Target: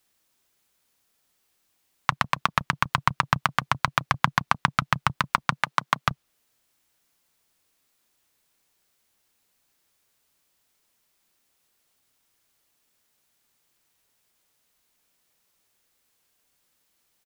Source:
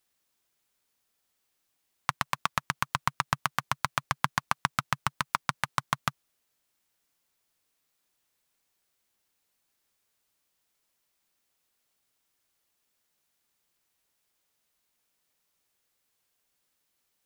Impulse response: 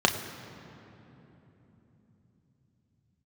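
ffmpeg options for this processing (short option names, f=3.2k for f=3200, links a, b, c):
-filter_complex "[0:a]asettb=1/sr,asplit=3[a][b][c];[a]atrim=end=5.634[d];[b]atrim=start=5.63:end=6.08,asetpts=PTS-STARTPTS,afade=t=in:d=0.004:c=qsin,afade=t=out:st=0.446:d=0.004:c=qsin,highpass=220[e];[c]atrim=start=6.076[f];[d][e]acrossfade=d=0.004:c1=hsin:c2=qsin[g];[g][f]acrossfade=d=0.004:c1=qsin:c2=hsin,acrossover=split=430|4800[h][i][j];[h]asplit=2[k][l];[l]adelay=31,volume=-5dB[m];[k][m]amix=inputs=2:normalize=0[n];[j]alimiter=level_in=0.5dB:limit=-24dB:level=0:latency=1:release=324,volume=-0.5dB[o];[n][i][o]amix=inputs=3:normalize=0,volume=6dB"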